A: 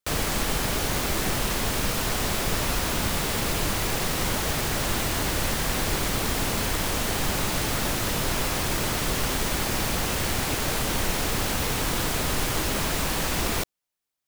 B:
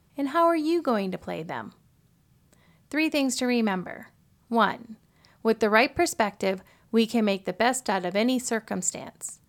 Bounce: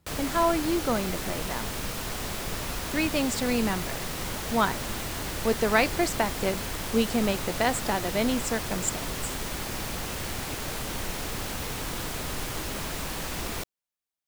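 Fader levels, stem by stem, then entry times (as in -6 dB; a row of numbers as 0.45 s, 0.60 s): -7.0 dB, -2.5 dB; 0.00 s, 0.00 s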